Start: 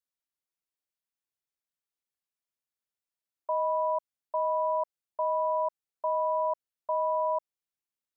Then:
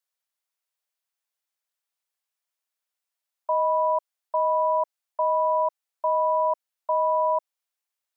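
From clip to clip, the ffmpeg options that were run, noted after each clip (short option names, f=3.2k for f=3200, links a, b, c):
-af "highpass=f=540:w=0.5412,highpass=f=540:w=1.3066,volume=6dB"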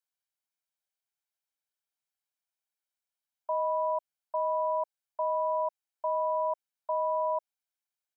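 -af "aecho=1:1:1.3:0.41,volume=-7.5dB"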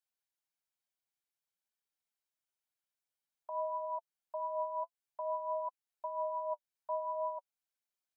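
-af "alimiter=level_in=4dB:limit=-24dB:level=0:latency=1:release=240,volume=-4dB,flanger=delay=3.5:depth=5.8:regen=32:speed=0.52:shape=triangular,volume=1dB"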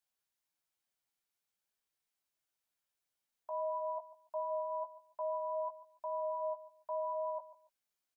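-filter_complex "[0:a]alimiter=level_in=11dB:limit=-24dB:level=0:latency=1:release=77,volume=-11dB,asplit=2[a][b];[b]adelay=16,volume=-6dB[c];[a][c]amix=inputs=2:normalize=0,aecho=1:1:143|286:0.15|0.0344,volume=2dB"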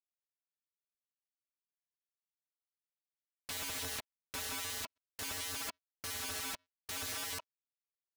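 -af "aeval=exprs='(mod(94.4*val(0)+1,2)-1)/94.4':c=same,acrusher=bits=6:mix=0:aa=0.5,asoftclip=type=tanh:threshold=-39dB,volume=6.5dB"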